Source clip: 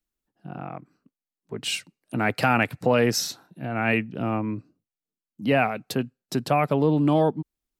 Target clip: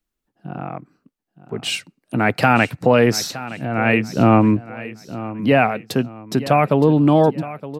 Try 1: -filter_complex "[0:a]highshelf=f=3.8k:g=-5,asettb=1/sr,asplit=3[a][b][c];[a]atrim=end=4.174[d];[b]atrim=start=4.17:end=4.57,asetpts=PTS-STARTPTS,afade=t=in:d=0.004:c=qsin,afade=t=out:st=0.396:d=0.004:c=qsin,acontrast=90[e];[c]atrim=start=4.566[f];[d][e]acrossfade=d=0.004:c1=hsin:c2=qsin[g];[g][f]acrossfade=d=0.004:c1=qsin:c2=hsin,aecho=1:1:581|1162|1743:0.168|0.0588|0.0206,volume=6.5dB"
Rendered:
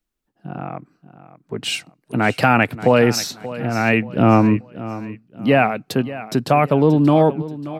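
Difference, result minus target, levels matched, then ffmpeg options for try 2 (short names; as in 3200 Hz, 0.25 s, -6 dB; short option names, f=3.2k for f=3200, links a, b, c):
echo 0.336 s early
-filter_complex "[0:a]highshelf=f=3.8k:g=-5,asettb=1/sr,asplit=3[a][b][c];[a]atrim=end=4.174[d];[b]atrim=start=4.17:end=4.57,asetpts=PTS-STARTPTS,afade=t=in:d=0.004:c=qsin,afade=t=out:st=0.396:d=0.004:c=qsin,acontrast=90[e];[c]atrim=start=4.566[f];[d][e]acrossfade=d=0.004:c1=hsin:c2=qsin[g];[g][f]acrossfade=d=0.004:c1=qsin:c2=hsin,aecho=1:1:917|1834|2751:0.168|0.0588|0.0206,volume=6.5dB"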